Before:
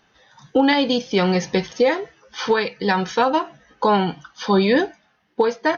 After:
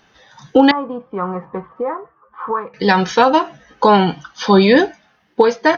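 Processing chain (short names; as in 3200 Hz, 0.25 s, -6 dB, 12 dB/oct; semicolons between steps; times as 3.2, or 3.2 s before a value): 0.71–2.74 ladder low-pass 1200 Hz, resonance 85%; gain +6 dB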